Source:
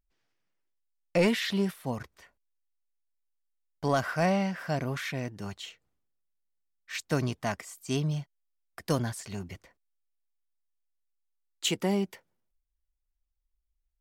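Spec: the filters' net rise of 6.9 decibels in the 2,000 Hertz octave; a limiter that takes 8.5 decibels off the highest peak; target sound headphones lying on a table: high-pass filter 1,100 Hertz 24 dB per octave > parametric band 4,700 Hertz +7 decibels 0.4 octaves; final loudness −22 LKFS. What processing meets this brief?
parametric band 2,000 Hz +8.5 dB
brickwall limiter −19.5 dBFS
high-pass filter 1,100 Hz 24 dB per octave
parametric band 4,700 Hz +7 dB 0.4 octaves
level +12.5 dB

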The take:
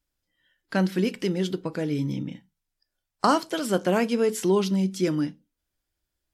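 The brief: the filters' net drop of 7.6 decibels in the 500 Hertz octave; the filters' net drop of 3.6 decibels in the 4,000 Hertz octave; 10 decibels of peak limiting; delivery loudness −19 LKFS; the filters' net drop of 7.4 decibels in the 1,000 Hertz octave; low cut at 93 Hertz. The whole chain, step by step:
high-pass filter 93 Hz
parametric band 500 Hz −9 dB
parametric band 1,000 Hz −6.5 dB
parametric band 4,000 Hz −4.5 dB
level +12.5 dB
brickwall limiter −9 dBFS

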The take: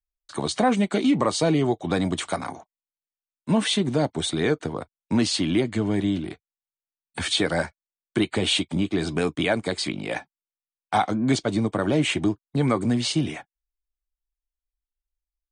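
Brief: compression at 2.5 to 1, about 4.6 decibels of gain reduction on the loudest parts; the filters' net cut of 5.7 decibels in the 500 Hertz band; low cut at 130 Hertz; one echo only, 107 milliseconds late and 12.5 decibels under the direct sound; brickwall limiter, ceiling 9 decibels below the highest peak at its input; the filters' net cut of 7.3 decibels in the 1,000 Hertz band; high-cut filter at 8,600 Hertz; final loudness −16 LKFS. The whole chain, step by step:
high-pass filter 130 Hz
low-pass filter 8,600 Hz
parametric band 500 Hz −5.5 dB
parametric band 1,000 Hz −8 dB
downward compressor 2.5 to 1, threshold −26 dBFS
brickwall limiter −24 dBFS
single-tap delay 107 ms −12.5 dB
level +17.5 dB

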